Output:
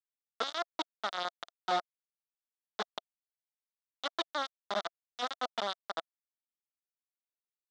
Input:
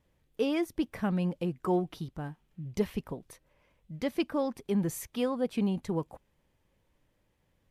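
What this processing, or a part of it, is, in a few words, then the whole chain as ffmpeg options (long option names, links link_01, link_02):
hand-held game console: -af "acrusher=bits=3:mix=0:aa=0.000001,highpass=400,equalizer=frequency=410:width_type=q:width=4:gain=-5,equalizer=frequency=680:width_type=q:width=4:gain=9,equalizer=frequency=1300:width_type=q:width=4:gain=9,equalizer=frequency=2500:width_type=q:width=4:gain=-9,equalizer=frequency=3600:width_type=q:width=4:gain=10,lowpass=frequency=5600:width=0.5412,lowpass=frequency=5600:width=1.3066,volume=-7.5dB"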